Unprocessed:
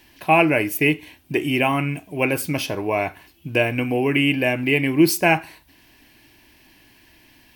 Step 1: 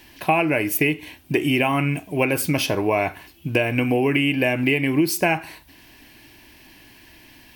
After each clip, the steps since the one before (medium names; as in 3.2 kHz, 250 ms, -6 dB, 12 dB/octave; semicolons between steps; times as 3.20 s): compression 10:1, threshold -20 dBFS, peak gain reduction 11 dB; trim +4.5 dB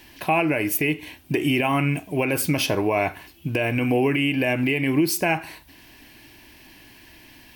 peak limiter -11 dBFS, peak gain reduction 6.5 dB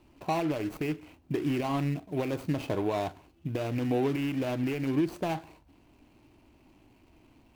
median filter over 25 samples; trim -6.5 dB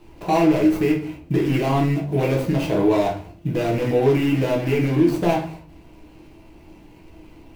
peak limiter -24 dBFS, peak gain reduction 5.5 dB; reverberation RT60 0.45 s, pre-delay 6 ms, DRR -2.5 dB; trim +7.5 dB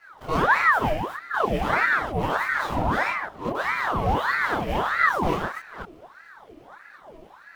chunks repeated in reverse 233 ms, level -6 dB; chorus voices 6, 1.2 Hz, delay 26 ms, depth 3 ms; ring modulator with a swept carrier 1 kHz, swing 70%, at 1.6 Hz